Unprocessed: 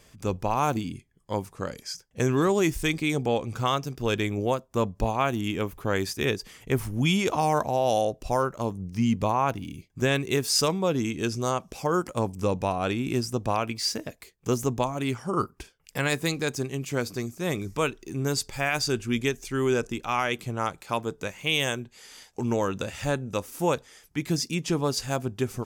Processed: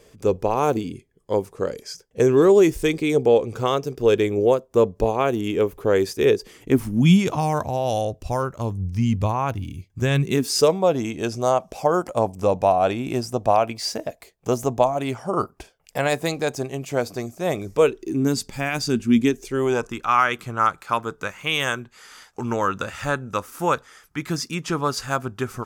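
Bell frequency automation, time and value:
bell +13 dB 0.86 oct
6.4 s 440 Hz
7.66 s 88 Hz
10.03 s 88 Hz
10.77 s 670 Hz
17.59 s 670 Hz
18.38 s 220 Hz
19.2 s 220 Hz
19.94 s 1300 Hz

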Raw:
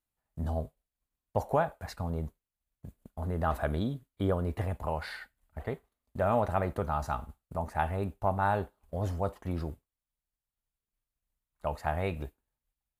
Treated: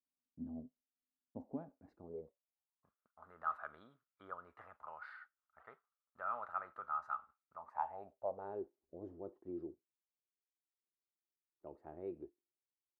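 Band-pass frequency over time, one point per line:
band-pass, Q 8
1.8 s 260 Hz
2.95 s 1300 Hz
7.56 s 1300 Hz
8.63 s 350 Hz

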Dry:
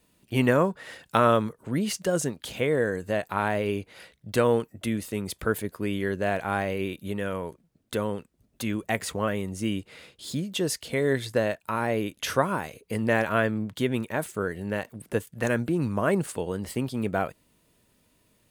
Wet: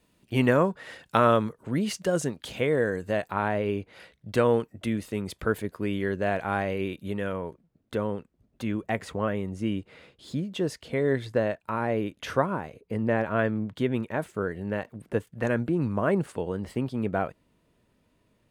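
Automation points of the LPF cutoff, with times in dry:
LPF 6 dB/oct
5400 Hz
from 3.31 s 2100 Hz
from 3.93 s 3600 Hz
from 7.32 s 1700 Hz
from 12.46 s 1000 Hz
from 13.39 s 1900 Hz

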